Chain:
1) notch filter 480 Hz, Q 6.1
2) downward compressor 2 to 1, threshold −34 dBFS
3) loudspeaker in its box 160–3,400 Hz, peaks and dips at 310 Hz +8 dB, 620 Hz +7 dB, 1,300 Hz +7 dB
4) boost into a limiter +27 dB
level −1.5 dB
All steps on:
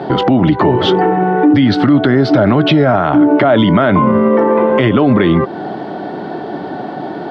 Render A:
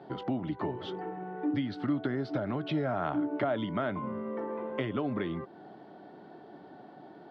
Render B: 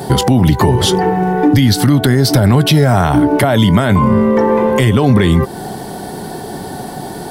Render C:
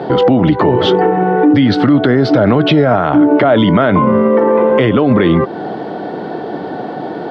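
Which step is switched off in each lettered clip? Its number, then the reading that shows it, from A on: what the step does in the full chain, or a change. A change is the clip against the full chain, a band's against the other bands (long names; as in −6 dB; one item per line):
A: 4, change in crest factor +7.0 dB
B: 3, change in momentary loudness spread +1 LU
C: 1, 500 Hz band +2.0 dB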